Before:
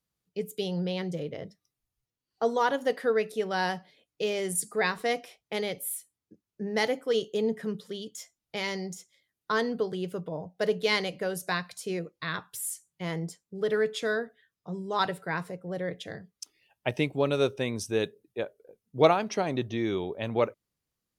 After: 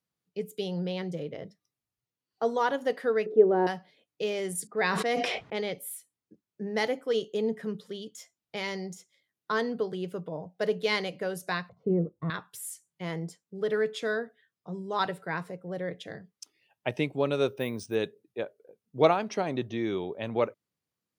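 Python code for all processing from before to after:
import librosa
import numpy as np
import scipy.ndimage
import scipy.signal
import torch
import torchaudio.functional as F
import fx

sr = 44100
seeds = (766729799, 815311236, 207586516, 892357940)

y = fx.chain(x, sr, fx.lowpass(hz=1000.0, slope=12),
    fx.peak_eq(hz=370.0, db=15.0, octaves=1.1), at=(3.26, 3.67))
y = fx.chain(y, sr, fx.env_lowpass(base_hz=1400.0, full_db=-23.5),
    fx.sustainer(db_per_s=21.0), at=(4.67, 5.74))
y = fx.chain(y, sr, fx.resample_bad(factor=4, down='filtered', up='hold'),
    fx.savgol(points=65),
    fx.tilt_eq(slope=-4.5), at=(11.69, 12.3))
y = fx.chain(y, sr, fx.high_shelf(hz=11000.0, db=-8.5),
    fx.resample_bad(factor=3, down='filtered', up='hold'), at=(17.48, 17.95))
y = scipy.signal.sosfilt(scipy.signal.butter(2, 110.0, 'highpass', fs=sr, output='sos'), y)
y = fx.high_shelf(y, sr, hz=4700.0, db=-5.0)
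y = F.gain(torch.from_numpy(y), -1.0).numpy()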